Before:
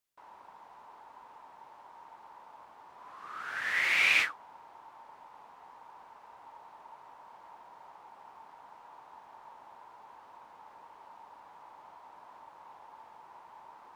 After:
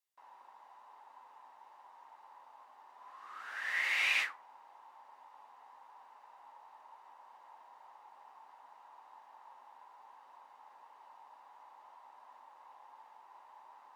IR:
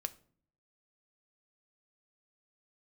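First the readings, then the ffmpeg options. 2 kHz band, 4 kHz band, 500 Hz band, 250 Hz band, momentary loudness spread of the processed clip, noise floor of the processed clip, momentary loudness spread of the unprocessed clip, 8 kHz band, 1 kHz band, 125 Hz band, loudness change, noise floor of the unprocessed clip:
−5.5 dB, −4.5 dB, −8.0 dB, below −10 dB, 19 LU, −60 dBFS, 18 LU, −5.0 dB, −5.0 dB, can't be measured, −5.5 dB, −56 dBFS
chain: -filter_complex "[0:a]highpass=420[link_01];[1:a]atrim=start_sample=2205,asetrate=70560,aresample=44100[link_02];[link_01][link_02]afir=irnorm=-1:irlink=0"

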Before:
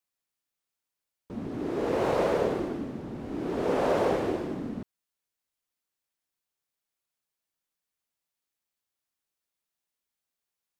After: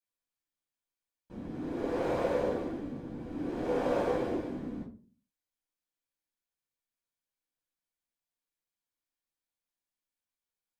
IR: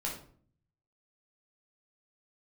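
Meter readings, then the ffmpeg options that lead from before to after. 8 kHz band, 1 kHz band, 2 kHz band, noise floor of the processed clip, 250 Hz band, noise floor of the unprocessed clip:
can't be measured, −6.0 dB, −5.5 dB, below −85 dBFS, −3.5 dB, below −85 dBFS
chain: -filter_complex "[1:a]atrim=start_sample=2205,asetrate=74970,aresample=44100[link_01];[0:a][link_01]afir=irnorm=-1:irlink=0,volume=-4.5dB"

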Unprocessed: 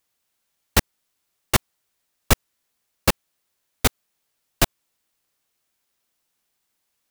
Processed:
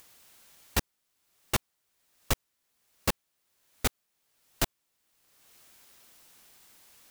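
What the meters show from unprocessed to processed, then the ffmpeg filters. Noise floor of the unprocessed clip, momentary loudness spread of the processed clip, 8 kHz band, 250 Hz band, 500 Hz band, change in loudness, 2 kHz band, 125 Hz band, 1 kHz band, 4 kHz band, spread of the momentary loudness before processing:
−76 dBFS, 1 LU, −9.0 dB, −10.0 dB, −9.5 dB, −9.5 dB, −9.5 dB, −10.0 dB, −9.5 dB, −9.0 dB, 1 LU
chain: -filter_complex "[0:a]asplit=2[link_01][link_02];[link_02]acompressor=mode=upward:threshold=-24dB:ratio=2.5,volume=-3dB[link_03];[link_01][link_03]amix=inputs=2:normalize=0,asoftclip=type=tanh:threshold=-11dB,volume=-8.5dB"

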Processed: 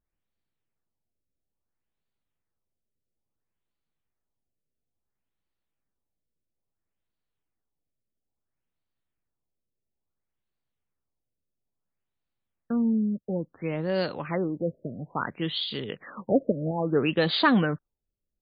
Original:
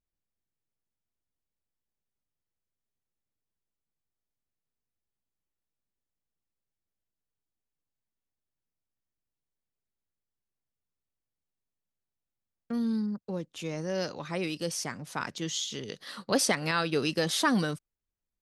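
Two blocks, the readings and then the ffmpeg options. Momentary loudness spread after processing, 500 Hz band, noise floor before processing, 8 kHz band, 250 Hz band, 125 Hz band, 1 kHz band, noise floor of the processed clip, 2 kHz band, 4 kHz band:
12 LU, +5.0 dB, below −85 dBFS, below −40 dB, +5.0 dB, +5.0 dB, +3.0 dB, −84 dBFS, +1.5 dB, +1.5 dB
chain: -af "acrusher=bits=8:mode=log:mix=0:aa=0.000001,afftfilt=real='re*lt(b*sr/1024,640*pow(4900/640,0.5+0.5*sin(2*PI*0.59*pts/sr)))':imag='im*lt(b*sr/1024,640*pow(4900/640,0.5+0.5*sin(2*PI*0.59*pts/sr)))':win_size=1024:overlap=0.75,volume=5dB"

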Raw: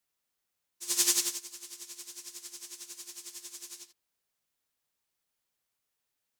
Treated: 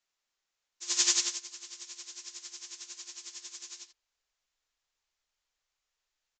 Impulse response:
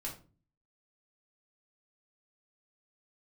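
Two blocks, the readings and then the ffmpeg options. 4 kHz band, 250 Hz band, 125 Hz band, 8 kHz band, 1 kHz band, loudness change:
+2.5 dB, −4.5 dB, can't be measured, 0.0 dB, +1.0 dB, 0.0 dB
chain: -af "asubboost=boost=5.5:cutoff=78,aresample=16000,aresample=44100,equalizer=frequency=120:width=0.35:gain=-11,volume=2.5dB"

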